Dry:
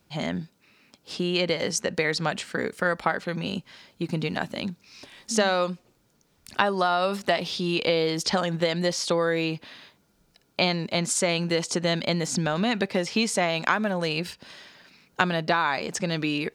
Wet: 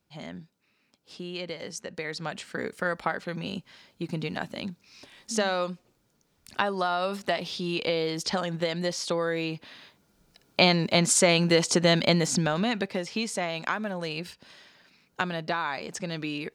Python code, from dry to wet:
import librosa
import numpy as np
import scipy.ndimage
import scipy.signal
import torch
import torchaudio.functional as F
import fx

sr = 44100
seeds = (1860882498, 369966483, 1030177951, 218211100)

y = fx.gain(x, sr, db=fx.line((1.88, -11.0), (2.66, -4.0), (9.48, -4.0), (10.68, 3.5), (12.1, 3.5), (13.05, -6.0)))